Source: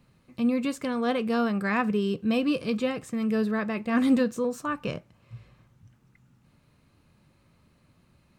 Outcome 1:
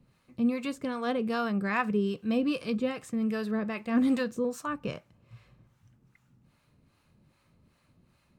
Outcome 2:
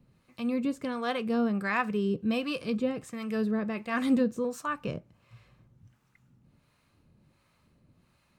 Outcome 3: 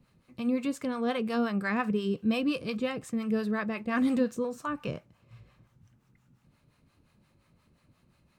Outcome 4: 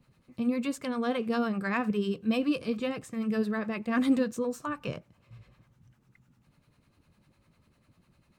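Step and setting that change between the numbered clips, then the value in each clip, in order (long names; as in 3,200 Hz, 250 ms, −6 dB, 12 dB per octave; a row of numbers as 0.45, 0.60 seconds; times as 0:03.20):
two-band tremolo in antiphase, speed: 2.5, 1.4, 5.7, 10 Hertz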